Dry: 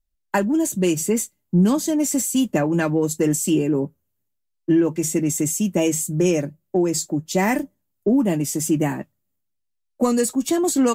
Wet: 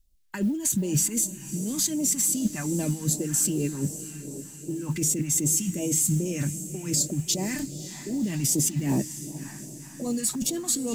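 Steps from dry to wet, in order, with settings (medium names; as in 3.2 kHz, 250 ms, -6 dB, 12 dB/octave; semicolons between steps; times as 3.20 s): compressor with a negative ratio -27 dBFS, ratio -1; peak limiter -17.5 dBFS, peak gain reduction 9 dB; echo that smears into a reverb 557 ms, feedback 56%, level -12.5 dB; phase shifter stages 2, 2.6 Hz, lowest notch 450–1500 Hz; modulation noise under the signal 32 dB; trim +3 dB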